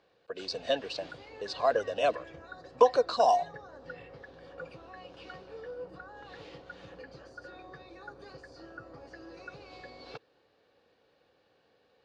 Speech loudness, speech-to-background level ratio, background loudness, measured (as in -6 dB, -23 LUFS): -28.0 LUFS, 19.5 dB, -47.5 LUFS